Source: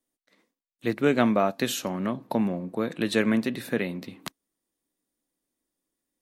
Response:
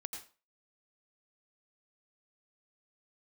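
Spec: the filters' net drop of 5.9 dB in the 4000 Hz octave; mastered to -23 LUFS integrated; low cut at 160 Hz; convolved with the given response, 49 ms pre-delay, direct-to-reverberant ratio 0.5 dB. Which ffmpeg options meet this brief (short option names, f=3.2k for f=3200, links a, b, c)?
-filter_complex "[0:a]highpass=160,equalizer=f=4k:t=o:g=-7.5,asplit=2[a][b];[1:a]atrim=start_sample=2205,adelay=49[c];[b][c]afir=irnorm=-1:irlink=0,volume=1.5dB[d];[a][d]amix=inputs=2:normalize=0,volume=2dB"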